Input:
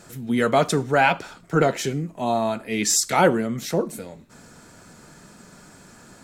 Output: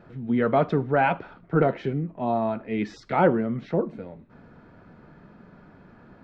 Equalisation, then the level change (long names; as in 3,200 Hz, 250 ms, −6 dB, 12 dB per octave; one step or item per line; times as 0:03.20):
high-frequency loss of the air 320 metres
head-to-tape spacing loss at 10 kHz 21 dB
0.0 dB